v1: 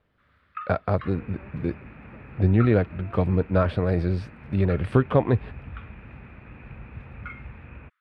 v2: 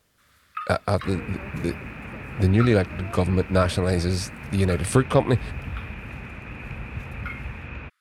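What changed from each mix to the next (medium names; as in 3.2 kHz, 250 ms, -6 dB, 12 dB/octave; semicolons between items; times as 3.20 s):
second sound +6.0 dB; master: remove distance through air 460 m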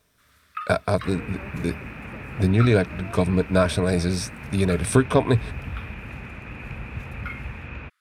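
speech: add rippled EQ curve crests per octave 1.6, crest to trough 7 dB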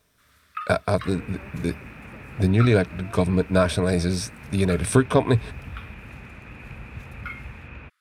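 second sound -4.5 dB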